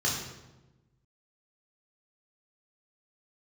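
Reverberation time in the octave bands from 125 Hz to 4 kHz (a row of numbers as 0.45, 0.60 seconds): 1.7, 1.4, 1.2, 0.95, 0.85, 0.75 seconds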